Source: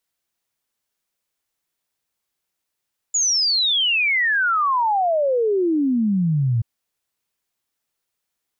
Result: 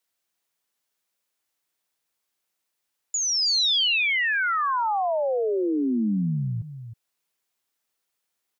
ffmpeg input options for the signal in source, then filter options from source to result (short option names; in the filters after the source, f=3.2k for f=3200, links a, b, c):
-f lavfi -i "aevalsrc='0.158*clip(min(t,3.48-t)/0.01,0,1)*sin(2*PI*7000*3.48/log(110/7000)*(exp(log(110/7000)*t/3.48)-1))':d=3.48:s=44100"
-filter_complex "[0:a]lowshelf=f=160:g=-9,aecho=1:1:315:0.211,acrossover=split=170|4300[a][b][c];[a]acompressor=threshold=-30dB:ratio=4[d];[b]acompressor=threshold=-23dB:ratio=4[e];[c]acompressor=threshold=-29dB:ratio=4[f];[d][e][f]amix=inputs=3:normalize=0"